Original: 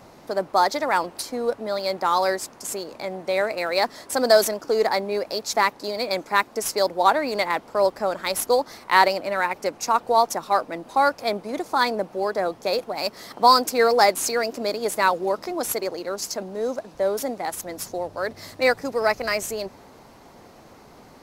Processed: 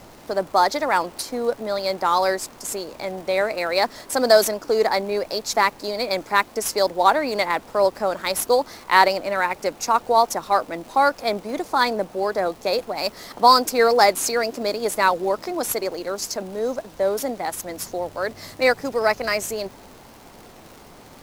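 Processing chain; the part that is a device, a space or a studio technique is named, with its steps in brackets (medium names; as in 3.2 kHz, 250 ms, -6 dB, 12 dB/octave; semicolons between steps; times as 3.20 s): vinyl LP (crackle 120 per s -36 dBFS; pink noise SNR 30 dB); trim +1.5 dB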